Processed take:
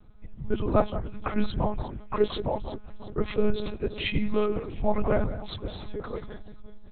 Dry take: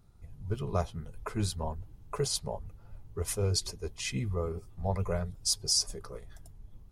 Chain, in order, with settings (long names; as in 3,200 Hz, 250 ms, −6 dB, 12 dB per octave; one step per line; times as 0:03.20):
on a send: delay that swaps between a low-pass and a high-pass 177 ms, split 2,000 Hz, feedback 67%, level −12 dB
on the sum: one-pitch LPC vocoder at 8 kHz 210 Hz
level +8 dB